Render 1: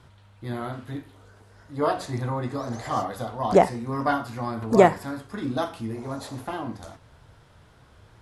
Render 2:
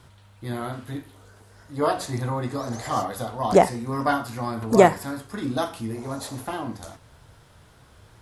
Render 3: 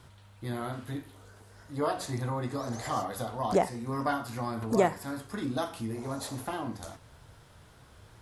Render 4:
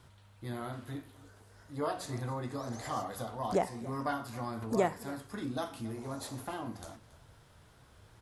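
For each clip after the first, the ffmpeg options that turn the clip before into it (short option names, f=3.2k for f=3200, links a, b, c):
-af "highshelf=f=6.6k:g=10,volume=1dB"
-af "acompressor=threshold=-31dB:ratio=1.5,volume=-2.5dB"
-af "aecho=1:1:278:0.112,volume=-4.5dB"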